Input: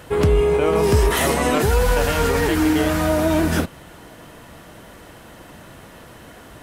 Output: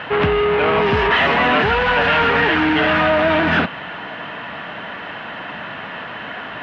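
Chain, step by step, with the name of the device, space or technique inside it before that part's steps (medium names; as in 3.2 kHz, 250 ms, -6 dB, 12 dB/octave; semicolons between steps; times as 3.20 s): overdrive pedal into a guitar cabinet (overdrive pedal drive 23 dB, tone 2.4 kHz, clips at -7 dBFS; cabinet simulation 80–3500 Hz, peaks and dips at 190 Hz +3 dB, 350 Hz -7 dB, 510 Hz -6 dB, 1.7 kHz +4 dB, 2.8 kHz +5 dB)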